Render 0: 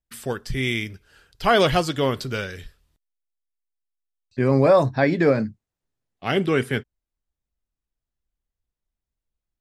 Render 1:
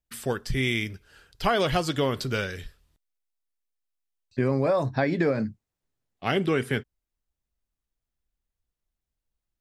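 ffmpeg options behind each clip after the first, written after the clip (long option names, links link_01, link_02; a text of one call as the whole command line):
ffmpeg -i in.wav -af "acompressor=threshold=-20dB:ratio=6" out.wav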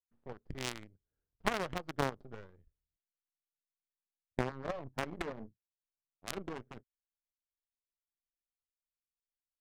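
ffmpeg -i in.wav -af "aeval=exprs='0.335*(cos(1*acos(clip(val(0)/0.335,-1,1)))-cos(1*PI/2))+0.106*(cos(3*acos(clip(val(0)/0.335,-1,1)))-cos(3*PI/2))+0.133*(cos(4*acos(clip(val(0)/0.335,-1,1)))-cos(4*PI/2))+0.075*(cos(6*acos(clip(val(0)/0.335,-1,1)))-cos(6*PI/2))+0.00211*(cos(8*acos(clip(val(0)/0.335,-1,1)))-cos(8*PI/2))':channel_layout=same,adynamicsmooth=sensitivity=5:basefreq=570,volume=-1dB" out.wav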